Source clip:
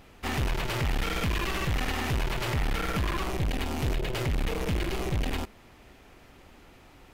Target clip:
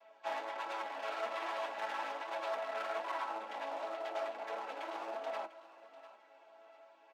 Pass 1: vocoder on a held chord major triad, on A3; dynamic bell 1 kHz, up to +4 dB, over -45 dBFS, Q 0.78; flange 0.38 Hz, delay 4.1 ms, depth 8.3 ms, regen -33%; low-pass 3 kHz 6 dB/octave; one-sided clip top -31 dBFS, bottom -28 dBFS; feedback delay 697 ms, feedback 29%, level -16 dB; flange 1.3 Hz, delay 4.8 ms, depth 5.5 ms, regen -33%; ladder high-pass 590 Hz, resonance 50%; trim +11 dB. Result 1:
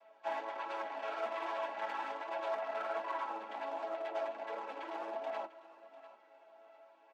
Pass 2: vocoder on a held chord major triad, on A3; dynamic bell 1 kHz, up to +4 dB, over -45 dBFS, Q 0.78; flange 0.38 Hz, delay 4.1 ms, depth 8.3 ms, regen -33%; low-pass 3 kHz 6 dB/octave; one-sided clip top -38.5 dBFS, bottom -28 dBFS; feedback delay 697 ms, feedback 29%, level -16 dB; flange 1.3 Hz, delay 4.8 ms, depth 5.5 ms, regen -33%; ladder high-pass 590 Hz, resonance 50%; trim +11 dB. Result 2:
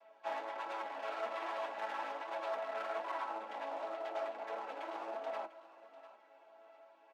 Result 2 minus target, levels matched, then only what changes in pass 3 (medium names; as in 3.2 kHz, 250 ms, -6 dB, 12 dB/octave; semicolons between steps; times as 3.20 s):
4 kHz band -3.0 dB
add after ladder high-pass: treble shelf 2.2 kHz +6 dB